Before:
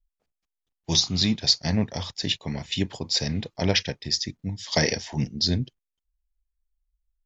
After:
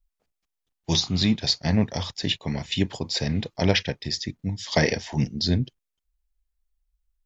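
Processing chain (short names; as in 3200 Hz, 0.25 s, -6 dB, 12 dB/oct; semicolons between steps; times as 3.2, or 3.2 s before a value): dynamic EQ 5700 Hz, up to -8 dB, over -37 dBFS, Q 1.2; gain +2.5 dB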